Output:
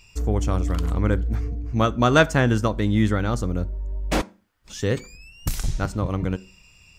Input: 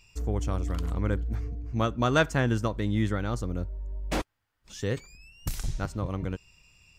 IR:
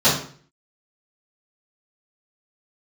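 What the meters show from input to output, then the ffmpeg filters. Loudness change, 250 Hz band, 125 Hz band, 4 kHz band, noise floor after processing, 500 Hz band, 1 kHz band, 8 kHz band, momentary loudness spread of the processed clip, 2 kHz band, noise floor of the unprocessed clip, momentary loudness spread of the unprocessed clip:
+6.5 dB, +7.0 dB, +6.0 dB, +6.5 dB, −55 dBFS, +7.0 dB, +7.0 dB, +6.5 dB, 13 LU, +6.5 dB, −78 dBFS, 13 LU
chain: -filter_complex "[0:a]asplit=2[link_01][link_02];[1:a]atrim=start_sample=2205,asetrate=61740,aresample=44100[link_03];[link_02][link_03]afir=irnorm=-1:irlink=0,volume=-36.5dB[link_04];[link_01][link_04]amix=inputs=2:normalize=0,volume=6.5dB"

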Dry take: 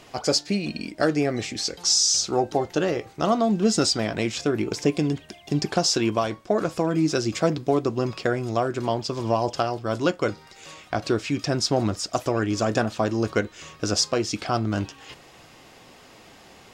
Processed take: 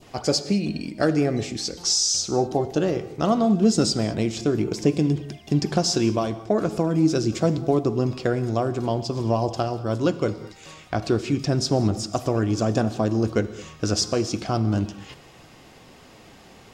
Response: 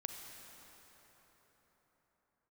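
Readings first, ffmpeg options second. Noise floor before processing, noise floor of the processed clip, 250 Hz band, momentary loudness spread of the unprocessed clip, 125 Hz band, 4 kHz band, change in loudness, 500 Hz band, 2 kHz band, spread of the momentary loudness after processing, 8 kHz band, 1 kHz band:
−50 dBFS, −49 dBFS, +2.5 dB, 8 LU, +4.5 dB, −2.0 dB, +1.0 dB, +0.5 dB, −4.0 dB, 7 LU, −1.5 dB, −1.5 dB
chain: -filter_complex "[0:a]adynamicequalizer=threshold=0.01:dfrequency=1800:dqfactor=0.8:tfrequency=1800:tqfactor=0.8:attack=5:release=100:ratio=0.375:range=3.5:mode=cutabove:tftype=bell,asplit=2[link_01][link_02];[1:a]atrim=start_sample=2205,afade=type=out:start_time=0.27:duration=0.01,atrim=end_sample=12348,lowshelf=frequency=400:gain=11[link_03];[link_02][link_03]afir=irnorm=-1:irlink=0,volume=0.5dB[link_04];[link_01][link_04]amix=inputs=2:normalize=0,volume=-6dB"

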